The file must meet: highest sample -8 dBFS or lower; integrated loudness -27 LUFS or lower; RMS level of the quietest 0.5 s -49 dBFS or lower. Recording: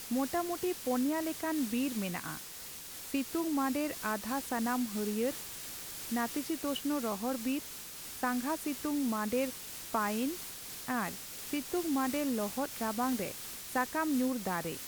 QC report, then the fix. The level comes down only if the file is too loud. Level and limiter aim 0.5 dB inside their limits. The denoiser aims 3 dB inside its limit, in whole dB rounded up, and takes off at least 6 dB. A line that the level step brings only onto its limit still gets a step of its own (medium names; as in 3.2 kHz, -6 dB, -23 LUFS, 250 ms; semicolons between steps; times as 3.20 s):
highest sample -17.5 dBFS: pass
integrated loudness -34.5 LUFS: pass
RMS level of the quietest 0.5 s -46 dBFS: fail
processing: noise reduction 6 dB, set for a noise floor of -46 dBFS